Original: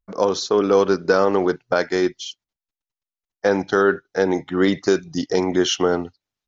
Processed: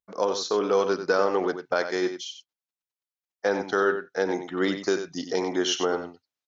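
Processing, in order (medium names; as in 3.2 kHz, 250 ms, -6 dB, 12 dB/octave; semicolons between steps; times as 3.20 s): high-pass 360 Hz 6 dB/octave; delay 93 ms -9.5 dB; trim -4.5 dB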